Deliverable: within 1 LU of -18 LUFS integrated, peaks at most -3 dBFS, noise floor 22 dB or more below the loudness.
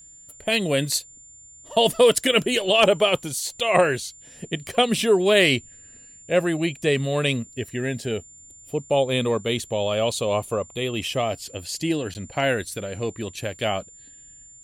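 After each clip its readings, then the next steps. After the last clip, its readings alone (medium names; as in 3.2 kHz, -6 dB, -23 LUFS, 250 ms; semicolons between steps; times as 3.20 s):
dropouts 1; longest dropout 9.7 ms; steady tone 7.2 kHz; tone level -45 dBFS; loudness -23.0 LUFS; peak level -6.0 dBFS; loudness target -18.0 LUFS
-> interpolate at 12.14 s, 9.7 ms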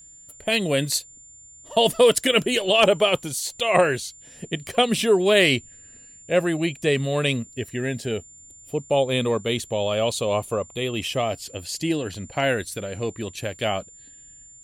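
dropouts 0; steady tone 7.2 kHz; tone level -45 dBFS
-> band-stop 7.2 kHz, Q 30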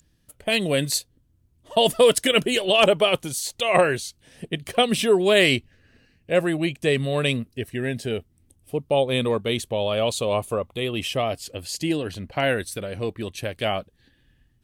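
steady tone not found; loudness -23.0 LUFS; peak level -6.0 dBFS; loudness target -18.0 LUFS
-> trim +5 dB; peak limiter -3 dBFS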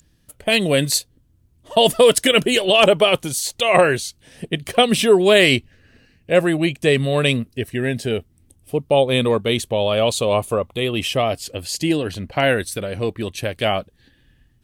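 loudness -18.5 LUFS; peak level -3.0 dBFS; noise floor -59 dBFS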